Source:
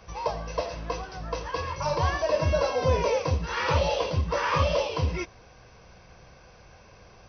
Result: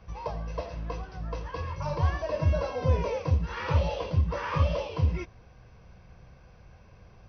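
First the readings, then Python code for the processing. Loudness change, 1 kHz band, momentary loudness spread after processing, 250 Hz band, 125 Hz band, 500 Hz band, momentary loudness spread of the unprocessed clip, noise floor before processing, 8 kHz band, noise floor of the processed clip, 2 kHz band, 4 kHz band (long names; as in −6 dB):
−2.5 dB, −6.5 dB, 10 LU, −0.5 dB, +2.0 dB, −6.0 dB, 10 LU, −53 dBFS, can't be measured, −54 dBFS, −7.0 dB, −9.5 dB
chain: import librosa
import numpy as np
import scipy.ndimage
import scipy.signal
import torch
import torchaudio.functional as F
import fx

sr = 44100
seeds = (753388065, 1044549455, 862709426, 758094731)

y = fx.bass_treble(x, sr, bass_db=9, treble_db=-7)
y = F.gain(torch.from_numpy(y), -6.5).numpy()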